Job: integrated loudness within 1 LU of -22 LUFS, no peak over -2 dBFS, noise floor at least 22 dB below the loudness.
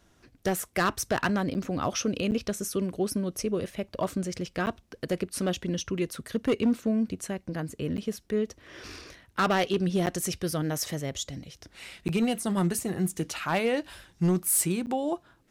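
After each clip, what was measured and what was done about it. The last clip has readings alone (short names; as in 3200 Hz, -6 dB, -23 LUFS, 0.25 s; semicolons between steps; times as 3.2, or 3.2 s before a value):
clipped 0.5%; flat tops at -18.5 dBFS; dropouts 7; longest dropout 9.4 ms; loudness -29.0 LUFS; peak -18.5 dBFS; loudness target -22.0 LUFS
-> clip repair -18.5 dBFS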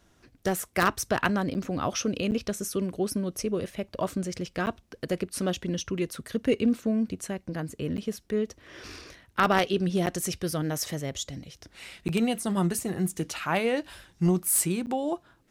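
clipped 0.0%; dropouts 7; longest dropout 9.4 ms
-> interpolate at 1.54/2.31/4.66/7.97/10.06/12.08/14.86, 9.4 ms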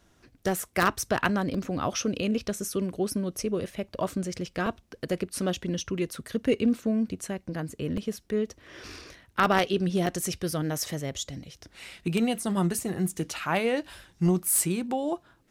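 dropouts 0; loudness -29.0 LUFS; peak -9.5 dBFS; loudness target -22.0 LUFS
-> gain +7 dB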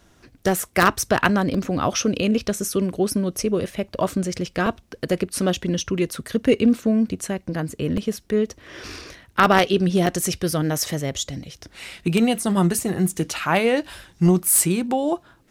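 loudness -22.0 LUFS; peak -2.5 dBFS; noise floor -57 dBFS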